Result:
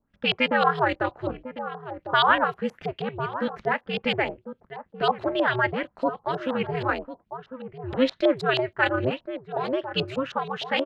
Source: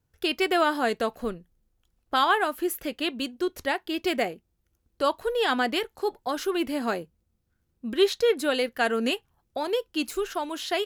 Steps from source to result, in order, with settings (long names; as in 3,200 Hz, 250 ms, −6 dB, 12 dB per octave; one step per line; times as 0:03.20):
ring modulation 130 Hz
slap from a distant wall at 180 metres, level −11 dB
auto-filter low-pass saw up 6.3 Hz 690–4,100 Hz
level +2 dB